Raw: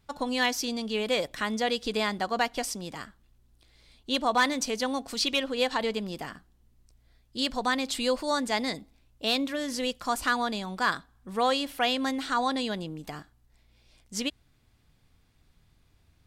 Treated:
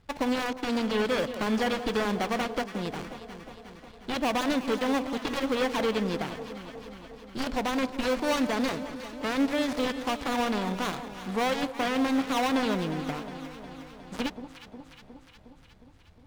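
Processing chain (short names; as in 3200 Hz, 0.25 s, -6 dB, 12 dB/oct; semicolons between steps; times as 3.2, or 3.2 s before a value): switching dead time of 0.29 ms; high shelf 6300 Hz -11 dB; limiter -22 dBFS, peak gain reduction 7 dB; on a send: echo with dull and thin repeats by turns 0.18 s, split 1000 Hz, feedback 80%, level -10 dB; on the sum: gain +5.5 dB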